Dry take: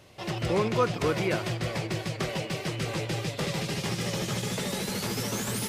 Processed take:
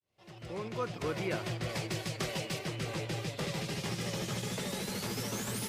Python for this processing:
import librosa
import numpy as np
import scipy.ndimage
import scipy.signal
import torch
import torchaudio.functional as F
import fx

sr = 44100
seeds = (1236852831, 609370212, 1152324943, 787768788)

y = fx.fade_in_head(x, sr, length_s=1.49)
y = fx.high_shelf(y, sr, hz=3700.0, db=7.0, at=(1.69, 2.59))
y = F.gain(torch.from_numpy(y), -5.5).numpy()